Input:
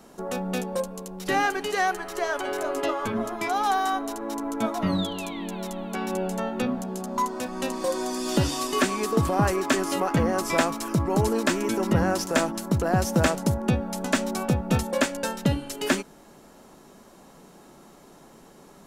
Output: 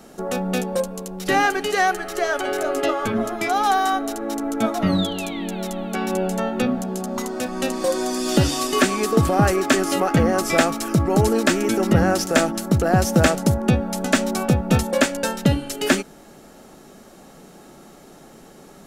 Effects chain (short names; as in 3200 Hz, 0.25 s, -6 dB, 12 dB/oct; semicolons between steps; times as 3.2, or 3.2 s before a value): notch 1000 Hz, Q 6.5; gain +5.5 dB